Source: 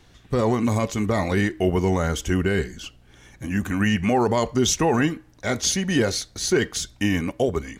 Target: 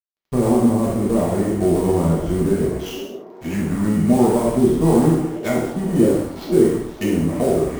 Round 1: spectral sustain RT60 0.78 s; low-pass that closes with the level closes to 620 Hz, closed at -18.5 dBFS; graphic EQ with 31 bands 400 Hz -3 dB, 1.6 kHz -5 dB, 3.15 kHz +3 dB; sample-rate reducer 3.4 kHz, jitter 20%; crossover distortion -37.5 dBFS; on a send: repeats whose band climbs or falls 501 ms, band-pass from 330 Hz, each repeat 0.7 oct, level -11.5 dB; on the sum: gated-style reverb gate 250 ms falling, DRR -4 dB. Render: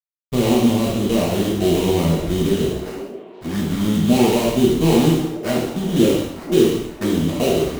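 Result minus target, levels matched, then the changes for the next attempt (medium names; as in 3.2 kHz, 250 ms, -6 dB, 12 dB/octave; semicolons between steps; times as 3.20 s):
sample-rate reducer: distortion +7 dB
change: sample-rate reducer 9.1 kHz, jitter 20%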